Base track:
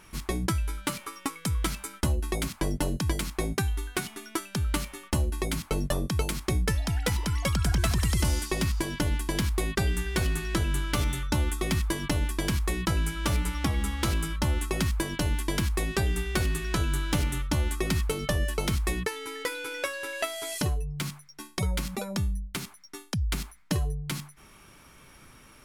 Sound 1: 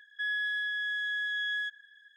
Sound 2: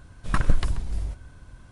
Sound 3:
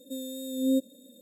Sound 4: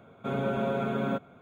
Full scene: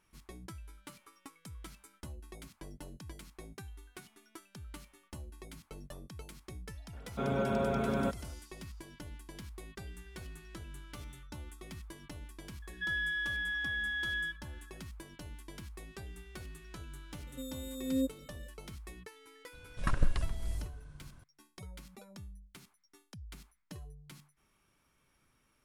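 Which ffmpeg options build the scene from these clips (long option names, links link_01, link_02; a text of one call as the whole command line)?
ffmpeg -i bed.wav -i cue0.wav -i cue1.wav -i cue2.wav -i cue3.wav -filter_complex "[0:a]volume=-20dB[link_01];[1:a]aecho=1:1:6.5:0.51[link_02];[4:a]atrim=end=1.41,asetpts=PTS-STARTPTS,volume=-2.5dB,afade=type=in:duration=0.004:curve=hsin,afade=type=out:start_time=1.406:duration=0.004:curve=hsin,adelay=6930[link_03];[link_02]atrim=end=2.16,asetpts=PTS-STARTPTS,volume=-6dB,afade=type=in:duration=0.004:curve=hsin,afade=type=out:start_time=2.156:duration=0.004:curve=hsin,adelay=12620[link_04];[3:a]atrim=end=1.21,asetpts=PTS-STARTPTS,volume=-6.5dB,afade=type=in:duration=0.004:curve=hsin,afade=type=out:start_time=1.206:duration=0.004:curve=hsin,adelay=17270[link_05];[2:a]atrim=end=1.71,asetpts=PTS-STARTPTS,volume=-8dB,afade=type=in:duration=0.004:curve=hsin,afade=type=out:start_time=1.706:duration=0.004:curve=hsin,adelay=19530[link_06];[link_01][link_03][link_04][link_05][link_06]amix=inputs=5:normalize=0" out.wav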